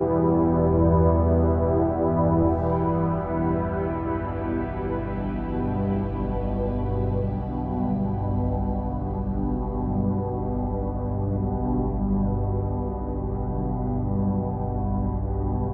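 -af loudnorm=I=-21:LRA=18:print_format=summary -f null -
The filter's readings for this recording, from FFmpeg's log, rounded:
Input Integrated:    -25.4 LUFS
Input True Peak:      -8.5 dBTP
Input LRA:             4.4 LU
Input Threshold:     -35.4 LUFS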